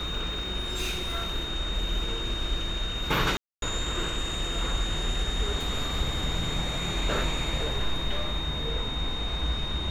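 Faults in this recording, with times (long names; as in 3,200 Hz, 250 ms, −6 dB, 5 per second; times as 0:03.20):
whistle 3,700 Hz −33 dBFS
0:03.37–0:03.62: drop-out 252 ms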